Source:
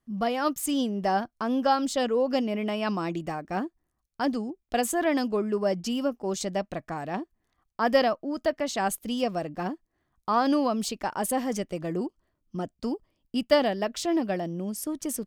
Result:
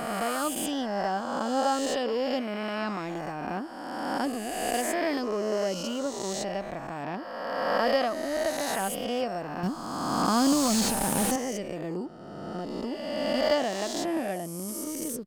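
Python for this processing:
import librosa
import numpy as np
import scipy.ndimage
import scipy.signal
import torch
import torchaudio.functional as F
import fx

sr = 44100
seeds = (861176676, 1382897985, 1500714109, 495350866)

y = fx.spec_swells(x, sr, rise_s=2.03)
y = fx.bass_treble(y, sr, bass_db=14, treble_db=14, at=(9.63, 11.36))
y = fx.slew_limit(y, sr, full_power_hz=540.0)
y = y * librosa.db_to_amplitude(-6.0)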